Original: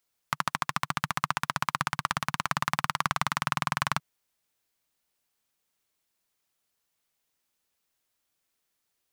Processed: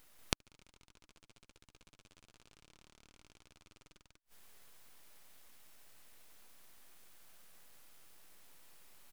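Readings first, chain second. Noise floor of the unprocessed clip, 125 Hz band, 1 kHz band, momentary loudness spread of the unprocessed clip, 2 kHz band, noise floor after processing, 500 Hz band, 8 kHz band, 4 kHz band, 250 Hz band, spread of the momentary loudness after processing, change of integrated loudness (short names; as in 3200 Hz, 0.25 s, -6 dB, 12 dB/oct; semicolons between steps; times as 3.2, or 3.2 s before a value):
-80 dBFS, -18.0 dB, -28.0 dB, 3 LU, -22.5 dB, under -85 dBFS, -11.5 dB, -11.5 dB, -13.0 dB, -14.5 dB, 4 LU, -20.0 dB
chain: bell 5500 Hz +12 dB 1.6 oct; full-wave rectifier; on a send: loudspeakers at several distances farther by 48 m -11 dB, 65 m -2 dB; on the sum: limiter -15 dBFS, peak gain reduction 15.5 dB; flipped gate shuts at -33 dBFS, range -38 dB; gain +11 dB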